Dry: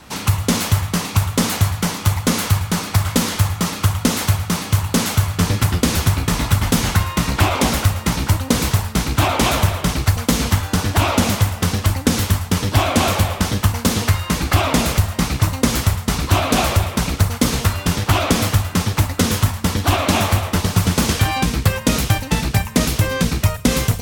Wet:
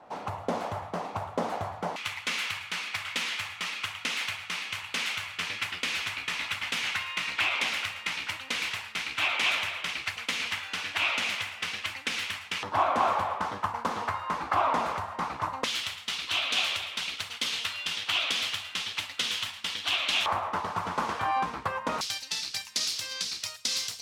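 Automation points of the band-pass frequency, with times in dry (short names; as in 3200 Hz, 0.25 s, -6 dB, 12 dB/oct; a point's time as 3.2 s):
band-pass, Q 2.5
690 Hz
from 1.96 s 2500 Hz
from 12.63 s 990 Hz
from 15.64 s 3100 Hz
from 20.26 s 1000 Hz
from 22.01 s 4700 Hz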